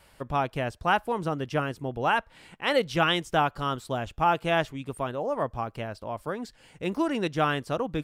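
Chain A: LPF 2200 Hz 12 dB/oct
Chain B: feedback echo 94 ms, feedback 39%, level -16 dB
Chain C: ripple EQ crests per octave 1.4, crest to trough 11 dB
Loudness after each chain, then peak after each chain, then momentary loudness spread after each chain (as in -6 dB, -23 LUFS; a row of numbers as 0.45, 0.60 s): -29.0, -28.0, -27.0 LUFS; -12.0, -11.5, -10.5 dBFS; 9, 10, 9 LU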